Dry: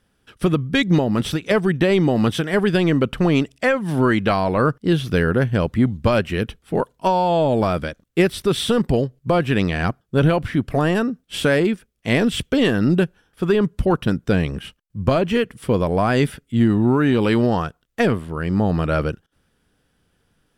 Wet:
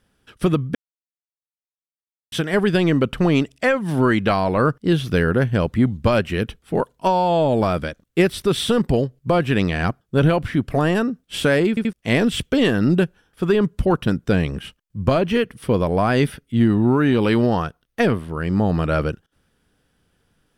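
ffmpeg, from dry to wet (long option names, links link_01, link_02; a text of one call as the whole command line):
ffmpeg -i in.wav -filter_complex "[0:a]asettb=1/sr,asplit=3[link_01][link_02][link_03];[link_01]atrim=end=15.174[link_04];[link_02]atrim=start=15.17:end=18.29,asetpts=PTS-STARTPTS,afade=type=in:duration=0.004:curve=qsin,afade=type=out:start_time=3.116:duration=0.004:curve=qsin,bandreject=frequency=7400:width=5.5[link_05];[link_03]atrim=start=18.286[link_06];[link_04][link_05]acrossfade=duration=0.004:curve1=hsin:curve2=qsin[link_07];[link_07][link_06]acrossfade=duration=0.004:curve1=qsin:curve2=hsin,asplit=6[link_08][link_09][link_10][link_11][link_12][link_13];[link_08]atrim=end=0.75,asetpts=PTS-STARTPTS,afade=type=out:start_time=0.746:duration=0.004:curve=hsin[link_14];[link_09]atrim=start=0.75:end=2.32,asetpts=PTS-STARTPTS,volume=0[link_15];[link_10]atrim=start=2.32:end=11.772,asetpts=PTS-STARTPTS,afade=type=in:duration=0.004:curve=hsin[link_16];[link_11]atrim=start=11.688:end=11.772[link_17];[link_12]atrim=start=11.688:end=11.772[link_18];[link_13]atrim=start=11.928[link_19];[link_14][link_15][link_16]concat=n=3:v=0:a=1[link_20];[link_20][link_17]acrossfade=duration=0.004:curve1=hsin:curve2=hsin[link_21];[link_21][link_18]acrossfade=duration=0.004:curve1=hsin:curve2=hsin[link_22];[link_22][link_19]acrossfade=duration=0.004:curve1=hsin:curve2=hsin" out.wav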